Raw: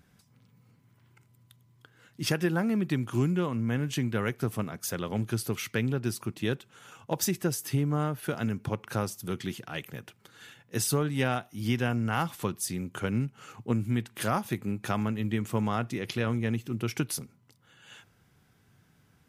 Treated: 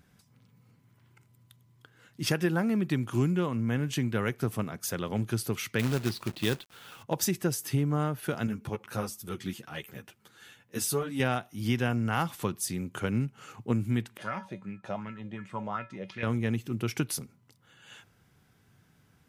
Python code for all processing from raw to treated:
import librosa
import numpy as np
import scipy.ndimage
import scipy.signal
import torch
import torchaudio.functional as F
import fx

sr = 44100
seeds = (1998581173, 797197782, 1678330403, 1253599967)

y = fx.chain(x, sr, fx.high_shelf_res(hz=5500.0, db=-9.5, q=3.0),
    fx.quant_companded(bits=4), at=(5.79, 7.03))
y = fx.chain(y, sr, fx.high_shelf(hz=11000.0, db=5.5),
    fx.ensemble(), at=(8.47, 11.2))
y = fx.chain(y, sr, fx.air_absorb(metres=83.0),
    fx.comb_fb(f0_hz=190.0, decay_s=0.24, harmonics='odd', damping=0.0, mix_pct=80),
    fx.bell_lfo(hz=2.7, low_hz=550.0, high_hz=2200.0, db=15), at=(14.17, 16.23))